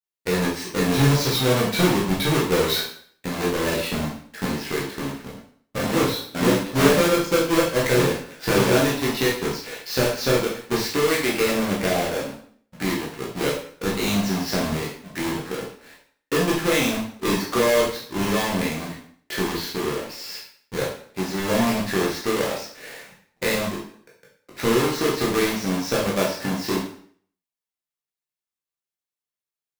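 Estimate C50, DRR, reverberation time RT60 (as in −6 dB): 4.5 dB, −5.0 dB, 0.55 s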